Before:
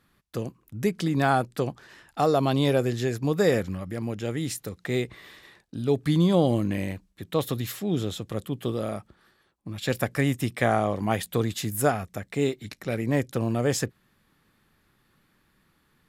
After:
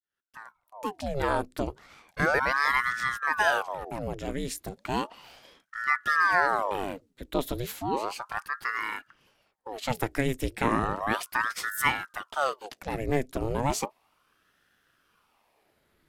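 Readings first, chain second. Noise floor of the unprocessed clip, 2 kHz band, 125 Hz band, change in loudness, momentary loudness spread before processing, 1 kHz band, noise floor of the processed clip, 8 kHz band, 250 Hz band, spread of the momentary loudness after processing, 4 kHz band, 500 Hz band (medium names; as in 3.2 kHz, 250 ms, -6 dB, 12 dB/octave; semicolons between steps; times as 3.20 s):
-68 dBFS, +7.5 dB, -10.0 dB, -2.0 dB, 13 LU, +3.0 dB, -73 dBFS, -3.0 dB, -8.5 dB, 14 LU, -2.5 dB, -6.0 dB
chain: fade-in on the opening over 1.64 s; ring modulator with a swept carrier 870 Hz, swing 85%, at 0.34 Hz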